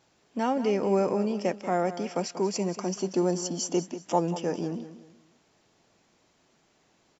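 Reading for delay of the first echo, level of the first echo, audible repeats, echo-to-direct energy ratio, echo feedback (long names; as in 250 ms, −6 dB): 187 ms, −13.0 dB, 3, −12.5 dB, 33%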